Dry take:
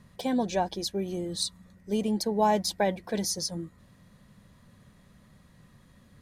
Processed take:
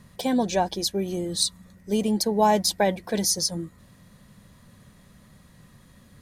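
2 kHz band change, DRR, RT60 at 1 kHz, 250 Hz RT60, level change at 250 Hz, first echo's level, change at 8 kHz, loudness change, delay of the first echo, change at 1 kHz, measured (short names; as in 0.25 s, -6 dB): +4.5 dB, none, none, none, +4.0 dB, none, +7.5 dB, +5.0 dB, none, +4.0 dB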